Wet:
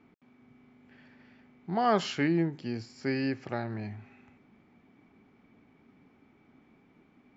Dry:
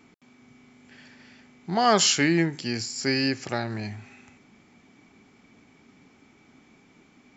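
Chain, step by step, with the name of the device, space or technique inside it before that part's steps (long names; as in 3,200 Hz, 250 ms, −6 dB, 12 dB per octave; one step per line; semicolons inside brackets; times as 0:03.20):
phone in a pocket (low-pass filter 3,700 Hz 12 dB per octave; high-shelf EQ 2,100 Hz −9 dB)
0:02.27–0:02.98: dynamic equaliser 1,900 Hz, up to −7 dB, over −46 dBFS, Q 1.4
level −4 dB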